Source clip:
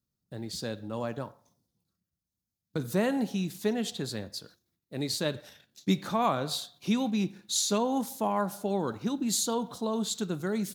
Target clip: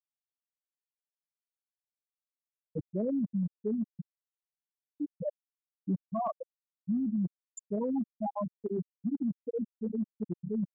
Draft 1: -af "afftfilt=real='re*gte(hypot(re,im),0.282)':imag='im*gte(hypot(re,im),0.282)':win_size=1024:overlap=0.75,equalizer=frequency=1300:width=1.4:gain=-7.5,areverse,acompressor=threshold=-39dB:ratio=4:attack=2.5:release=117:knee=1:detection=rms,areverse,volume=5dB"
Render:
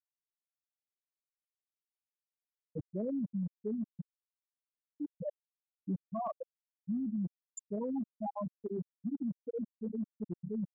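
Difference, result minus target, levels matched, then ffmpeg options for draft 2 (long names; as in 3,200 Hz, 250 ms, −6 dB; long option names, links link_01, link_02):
downward compressor: peak gain reduction +4.5 dB
-af "afftfilt=real='re*gte(hypot(re,im),0.282)':imag='im*gte(hypot(re,im),0.282)':win_size=1024:overlap=0.75,equalizer=frequency=1300:width=1.4:gain=-7.5,areverse,acompressor=threshold=-33dB:ratio=4:attack=2.5:release=117:knee=1:detection=rms,areverse,volume=5dB"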